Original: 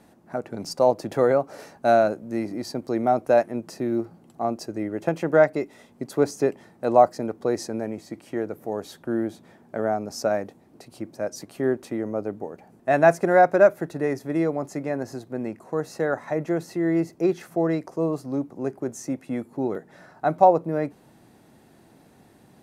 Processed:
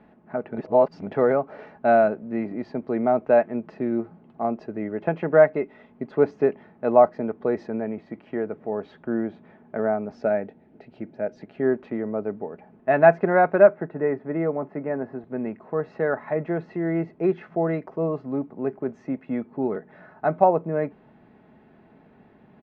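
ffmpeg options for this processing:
-filter_complex "[0:a]asettb=1/sr,asplit=3[a][b][c];[a]atrim=end=10.154[d];[b]atrim=start=10.15:end=11.63,asetpts=PTS-STARTPTS,afade=t=in:d=0.004:c=qsin,afade=t=out:st=1.476:d=0.004:c=qsin,equalizer=f=1.1k:t=o:w=0.26:g=-13[e];[c]atrim=start=11.626[f];[d][e]acrossfade=d=0.004:c1=hsin:c2=qsin[g];[g][f]acrossfade=d=0.004:c1=qsin:c2=hsin,asettb=1/sr,asplit=3[h][i][j];[h]atrim=end=13.674[k];[i]atrim=start=13.67:end=15.24,asetpts=PTS-STARTPTS,afade=t=in:d=0.004:c=qsin,afade=t=out:st=1.566:d=0.004:c=qsin,highpass=110,lowpass=2k[l];[j]atrim=start=15.236[m];[k][l]acrossfade=d=0.004:c1=hsin:c2=qsin[n];[n][m]acrossfade=d=0.004:c1=qsin:c2=hsin,asplit=3[o][p][q];[o]atrim=end=0.582[r];[p]atrim=start=0.578:end=1.072,asetpts=PTS-STARTPTS,areverse[s];[q]atrim=start=1.068[t];[r][s]acrossfade=d=0.004:c1=hsin:c2=hsin[u];[u][t]acrossfade=d=0.004:c1=hsin:c2=hsin,lowpass=f=2.7k:w=0.5412,lowpass=f=2.7k:w=1.3066,aecho=1:1:4.7:0.36"

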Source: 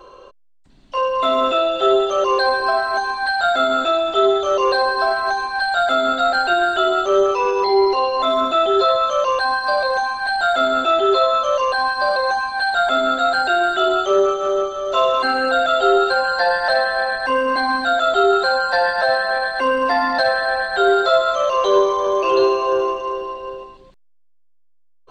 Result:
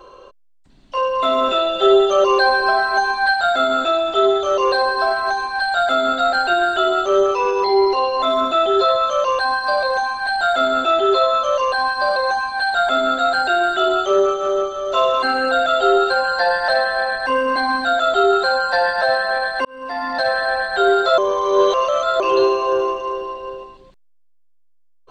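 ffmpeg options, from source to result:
-filter_complex "[0:a]asettb=1/sr,asplit=3[a][b][c];[a]atrim=end=1.484[d];[b]atrim=start=1.48:end=3.34,asetpts=PTS-STARTPTS,afade=t=in:d=0.004:c=qsin,afade=t=out:st=1.856:d=0.004:c=qsin,aecho=1:1:5.1:0.68,atrim=end_sample=82026[e];[c]atrim=start=3.336[f];[d][e]acrossfade=d=0.004:c1=hsin:c2=qsin[g];[g][f]acrossfade=d=0.004:c1=qsin:c2=hsin,asplit=4[h][i][j][k];[h]atrim=end=19.65,asetpts=PTS-STARTPTS,afade=t=out:st=19.646:d=0.004:c=hsin[l];[i]atrim=start=19.65:end=21.182,asetpts=PTS-STARTPTS,afade=t=in:d=0.74[m];[j]atrim=start=21.178:end=22.202,asetpts=PTS-STARTPTS,areverse[n];[k]atrim=start=22.198[o];[l][m]concat=n=2:v=0:a=1[p];[p][n]acrossfade=d=0.004:c1=hsin:c2=hsin[q];[q][o]acrossfade=d=0.004:c1=hsin:c2=hsin"

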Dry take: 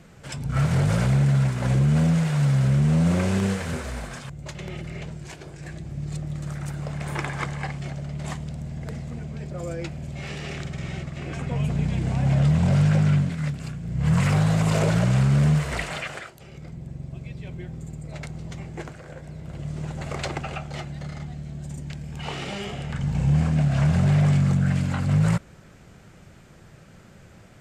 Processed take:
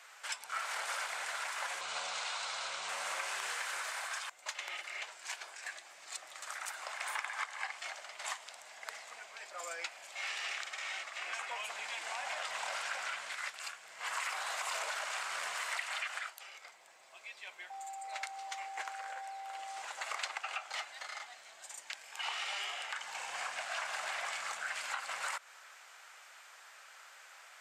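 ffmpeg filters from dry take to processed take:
-filter_complex "[0:a]asettb=1/sr,asplit=3[a][b][c];[a]atrim=end=1.814[d];[b]atrim=start=1.81:end=2.89,asetpts=PTS-STARTPTS,afade=t=in:d=0.004:c=qsin,afade=t=out:st=1.076:d=0.004:c=qsin,highpass=110,equalizer=f=140:t=q:w=4:g=7,equalizer=f=1.8k:t=q:w=4:g=-8,equalizer=f=4k:t=q:w=4:g=6,lowpass=f=8.1k:w=0.5412,lowpass=f=8.1k:w=1.3066[e];[c]atrim=start=2.886[f];[d][e]acrossfade=d=0.004:c1=hsin:c2=qsin[g];[g][f]acrossfade=d=0.004:c1=qsin:c2=hsin,asettb=1/sr,asplit=3[h][i][j];[h]atrim=end=17.704[k];[i]atrim=start=17.7:end=19.82,asetpts=PTS-STARTPTS,afade=t=in:d=0.004:c=qsin,afade=t=out:st=2.116:d=0.004:c=qsin,aeval=exprs='val(0)+0.0112*sin(2*PI*780*n/s)':c=same[l];[j]atrim=start=19.816[m];[k][l]acrossfade=d=0.004:c1=hsin:c2=qsin[n];[n][m]acrossfade=d=0.004:c1=qsin:c2=hsin,highpass=f=880:w=0.5412,highpass=f=880:w=1.3066,acompressor=threshold=-38dB:ratio=5,volume=2.5dB"

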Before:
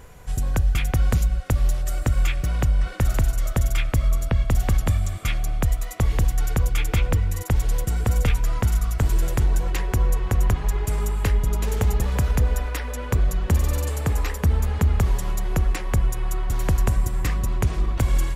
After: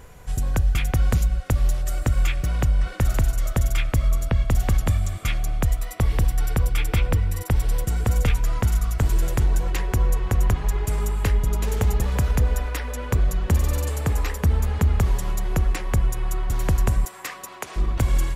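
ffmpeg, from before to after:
-filter_complex "[0:a]asettb=1/sr,asplit=3[a][b][c];[a]atrim=end=5.794[d];[b]atrim=start=5.79:end=7.82,asetpts=PTS-STARTPTS,afade=t=in:d=0.004:c=qsin,afade=t=out:st=2.026:d=0.004:c=qsin,bandreject=f=6.7k:w=7.4[e];[c]atrim=start=7.816[f];[d][e]acrossfade=d=0.004:c1=hsin:c2=qsin[g];[g][f]acrossfade=d=0.004:c1=qsin:c2=hsin,asettb=1/sr,asplit=3[h][i][j];[h]atrim=end=17.054[k];[i]atrim=start=17.05:end=17.76,asetpts=PTS-STARTPTS,afade=t=in:d=0.004:c=qsin,afade=t=out:st=0.706:d=0.004:c=qsin,highpass=590[l];[j]atrim=start=17.756[m];[k][l]acrossfade=d=0.004:c1=hsin:c2=qsin[n];[n][m]acrossfade=d=0.004:c1=qsin:c2=hsin"

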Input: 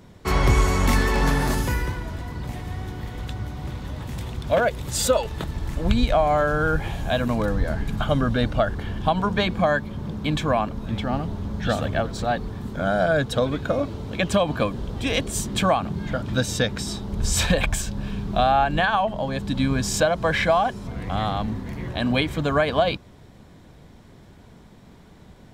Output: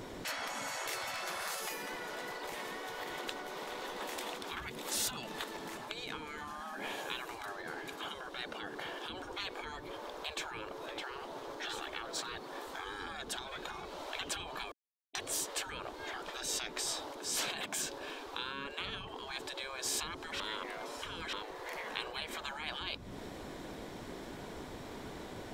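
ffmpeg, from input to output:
-filter_complex "[0:a]asplit=5[a][b][c][d][e];[a]atrim=end=14.72,asetpts=PTS-STARTPTS,afade=t=out:st=14.716:d=0.004:c=hsin[f];[b]atrim=start=14.72:end=15.15,asetpts=PTS-STARTPTS,volume=0[g];[c]atrim=start=15.15:end=20.402,asetpts=PTS-STARTPTS,afade=t=in:d=0.004:c=hsin[h];[d]atrim=start=20.398:end=21.332,asetpts=PTS-STARTPTS,areverse[i];[e]atrim=start=21.328[j];[f][g][h]concat=n=3:v=0:a=1[k];[k][i]acrossfade=d=0.004:c1=hsin:c2=hsin[l];[l][j]acrossfade=d=0.004:c1=hsin:c2=hsin,acompressor=threshold=-35dB:ratio=5,lowshelf=f=350:g=2.5,afftfilt=real='re*lt(hypot(re,im),0.0251)':imag='im*lt(hypot(re,im),0.0251)':win_size=1024:overlap=0.75,volume=7dB"

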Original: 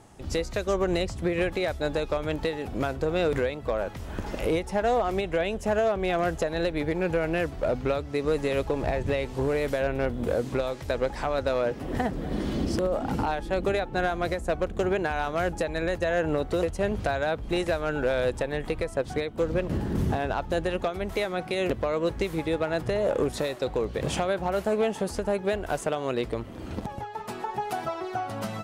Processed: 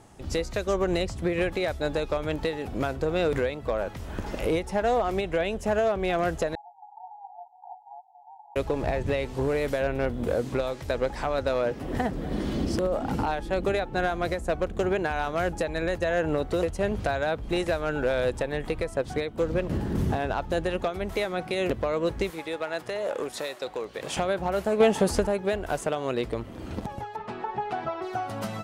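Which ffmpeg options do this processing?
-filter_complex "[0:a]asettb=1/sr,asplit=3[a][b][c];[a]atrim=end=6.554[d];[b]atrim=start=6.55:end=8.56,asetpts=PTS-STARTPTS,afade=t=in:d=0.004:c=qsin,afade=t=out:st=2.006:d=0.004:c=qsin,asuperpass=centerf=820:order=20:qfactor=3.5[e];[c]atrim=start=8.556[f];[d][e]acrossfade=d=0.004:c1=hsin:c2=qsin[g];[g][f]acrossfade=d=0.004:c1=qsin:c2=hsin,asettb=1/sr,asplit=3[h][i][j];[h]atrim=end=22.304[k];[i]atrim=start=22.3:end=24.17,asetpts=PTS-STARTPTS,afade=t=in:d=0.004:c=qsin,afade=t=out:st=1.866:d=0.004:c=qsin,highpass=f=740:p=1[l];[j]atrim=start=24.166[m];[k][l]acrossfade=d=0.004:c1=hsin:c2=qsin[n];[n][m]acrossfade=d=0.004:c1=qsin:c2=hsin,asettb=1/sr,asplit=3[o][p][q];[o]atrim=end=24.804[r];[p]atrim=start=24.8:end=25.27,asetpts=PTS-STARTPTS,afade=t=in:d=0.004:c=qsin,afade=t=out:st=0.466:d=0.004:c=qsin,acontrast=62[s];[q]atrim=start=25.266[t];[r][s]acrossfade=d=0.004:c1=hsin:c2=qsin[u];[u][t]acrossfade=d=0.004:c1=qsin:c2=hsin,asettb=1/sr,asplit=3[v][w][x];[v]atrim=end=27.164[y];[w]atrim=start=27.16:end=28.02,asetpts=PTS-STARTPTS,afade=t=in:d=0.004:c=qsin,afade=t=out:st=0.856:d=0.004:c=qsin,lowpass=3.2k[z];[x]atrim=start=28.016[aa];[y][z]acrossfade=d=0.004:c1=hsin:c2=qsin[ab];[ab][aa]acrossfade=d=0.004:c1=qsin:c2=hsin"

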